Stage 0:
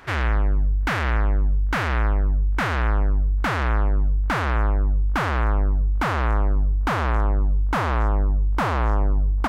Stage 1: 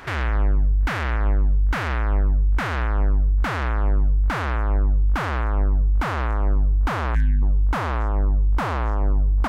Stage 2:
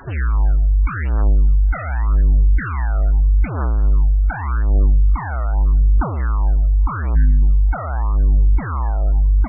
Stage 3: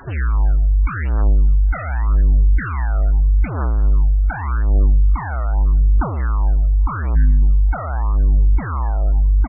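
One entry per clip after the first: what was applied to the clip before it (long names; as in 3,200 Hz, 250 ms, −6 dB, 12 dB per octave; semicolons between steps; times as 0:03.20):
gain on a spectral selection 0:07.15–0:07.43, 260–1,500 Hz −30 dB; brickwall limiter −19.5 dBFS, peak gain reduction 8.5 dB; level +5.5 dB
phase shifter 0.83 Hz, delay 1.6 ms, feedback 57%; spectral peaks only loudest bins 32; level −1.5 dB
slap from a distant wall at 160 metres, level −27 dB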